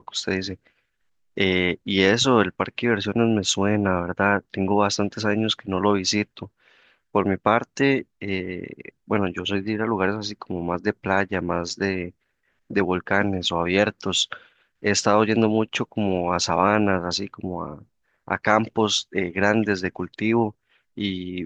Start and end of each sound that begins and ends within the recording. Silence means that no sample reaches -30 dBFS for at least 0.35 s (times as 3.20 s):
1.37–6.44 s
7.15–12.09 s
12.71–14.33 s
14.84–17.75 s
18.28–20.50 s